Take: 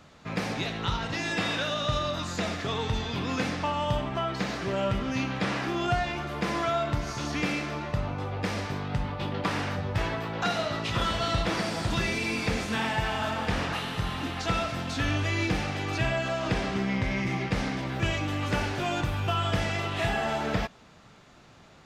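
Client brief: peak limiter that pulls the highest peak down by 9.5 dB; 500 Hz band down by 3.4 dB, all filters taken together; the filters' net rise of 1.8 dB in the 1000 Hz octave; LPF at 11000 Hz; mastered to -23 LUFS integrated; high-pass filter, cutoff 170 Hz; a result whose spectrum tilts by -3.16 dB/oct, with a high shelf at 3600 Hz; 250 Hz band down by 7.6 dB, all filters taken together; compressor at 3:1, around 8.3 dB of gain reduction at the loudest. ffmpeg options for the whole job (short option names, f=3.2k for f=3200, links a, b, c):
-af "highpass=170,lowpass=11k,equalizer=f=250:t=o:g=-7.5,equalizer=f=500:t=o:g=-5,equalizer=f=1k:t=o:g=4,highshelf=f=3.6k:g=3.5,acompressor=threshold=-35dB:ratio=3,volume=15.5dB,alimiter=limit=-15dB:level=0:latency=1"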